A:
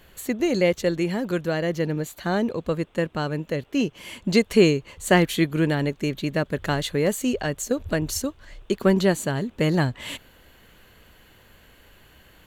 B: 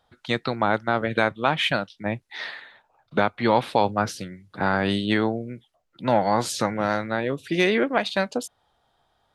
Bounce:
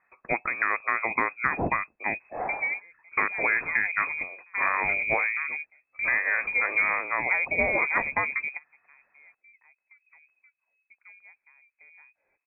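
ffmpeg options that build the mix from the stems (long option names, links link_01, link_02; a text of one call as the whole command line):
ffmpeg -i stem1.wav -i stem2.wav -filter_complex "[0:a]aemphasis=mode=reproduction:type=75kf,adelay=2200,volume=-6.5dB[link_01];[1:a]aeval=exprs='0.596*(cos(1*acos(clip(val(0)/0.596,-1,1)))-cos(1*PI/2))+0.0133*(cos(4*acos(clip(val(0)/0.596,-1,1)))-cos(4*PI/2))':channel_layout=same,equalizer=frequency=2700:width_type=o:width=1.7:gain=11.5,volume=-4dB,asplit=2[link_02][link_03];[link_03]apad=whole_len=646759[link_04];[link_01][link_04]sidechaingate=range=-27dB:threshold=-46dB:ratio=16:detection=peak[link_05];[link_05][link_02]amix=inputs=2:normalize=0,lowpass=frequency=2200:width_type=q:width=0.5098,lowpass=frequency=2200:width_type=q:width=0.6013,lowpass=frequency=2200:width_type=q:width=0.9,lowpass=frequency=2200:width_type=q:width=2.563,afreqshift=-2600,acompressor=threshold=-20dB:ratio=6" out.wav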